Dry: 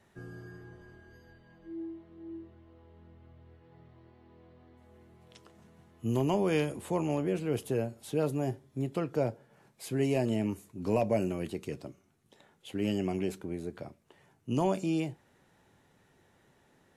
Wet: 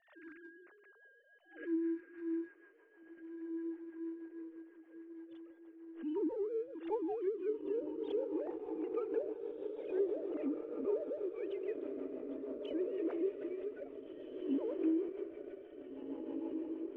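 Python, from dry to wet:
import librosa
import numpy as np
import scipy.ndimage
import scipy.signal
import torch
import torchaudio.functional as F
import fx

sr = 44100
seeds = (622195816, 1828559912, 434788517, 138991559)

p1 = fx.sine_speech(x, sr)
p2 = fx.env_lowpass_down(p1, sr, base_hz=360.0, full_db=-26.0)
p3 = p2 + fx.echo_diffused(p2, sr, ms=1756, feedback_pct=44, wet_db=-4, dry=0)
p4 = fx.rotary(p3, sr, hz=6.3)
p5 = fx.backlash(p4, sr, play_db=-39.0)
p6 = p4 + F.gain(torch.from_numpy(p5), -10.5).numpy()
p7 = fx.pre_swell(p6, sr, db_per_s=130.0)
y = F.gain(torch.from_numpy(p7), -5.0).numpy()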